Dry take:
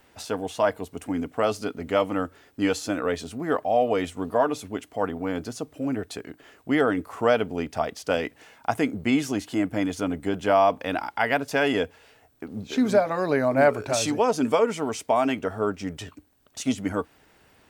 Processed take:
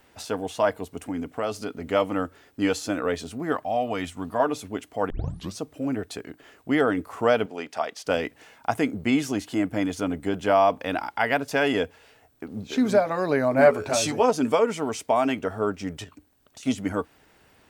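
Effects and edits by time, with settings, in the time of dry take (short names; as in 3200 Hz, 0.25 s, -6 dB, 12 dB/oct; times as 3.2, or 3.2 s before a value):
0.97–1.84 compressor 1.5:1, threshold -30 dBFS
3.52–4.4 bell 460 Hz -9 dB 0.85 oct
5.1 tape start 0.50 s
7.46–8.06 weighting filter A
13.58–14.3 doubler 12 ms -5 dB
16.04–16.63 compressor, threshold -42 dBFS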